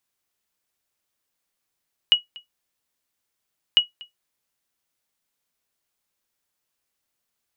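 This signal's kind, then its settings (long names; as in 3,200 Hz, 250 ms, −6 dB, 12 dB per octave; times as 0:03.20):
ping with an echo 2,910 Hz, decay 0.14 s, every 1.65 s, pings 2, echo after 0.24 s, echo −24.5 dB −6.5 dBFS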